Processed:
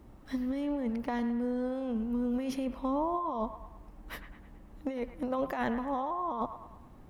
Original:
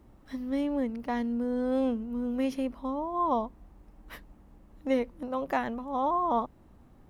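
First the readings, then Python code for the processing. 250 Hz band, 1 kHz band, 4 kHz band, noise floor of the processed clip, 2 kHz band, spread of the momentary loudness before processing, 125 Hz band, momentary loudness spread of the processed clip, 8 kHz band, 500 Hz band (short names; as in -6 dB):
-2.0 dB, -4.0 dB, -2.5 dB, -53 dBFS, -2.0 dB, 13 LU, +1.0 dB, 14 LU, n/a, -3.5 dB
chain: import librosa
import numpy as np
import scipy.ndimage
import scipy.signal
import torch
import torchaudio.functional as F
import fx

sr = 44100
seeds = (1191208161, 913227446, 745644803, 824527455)

p1 = fx.over_compress(x, sr, threshold_db=-32.0, ratio=-1.0)
y = p1 + fx.echo_wet_bandpass(p1, sr, ms=107, feedback_pct=50, hz=1400.0, wet_db=-9.5, dry=0)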